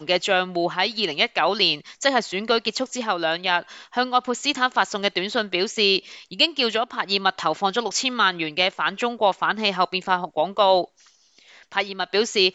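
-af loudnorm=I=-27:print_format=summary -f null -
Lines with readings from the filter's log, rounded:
Input Integrated:    -21.9 LUFS
Input True Peak:      -4.5 dBTP
Input LRA:             1.0 LU
Input Threshold:     -32.2 LUFS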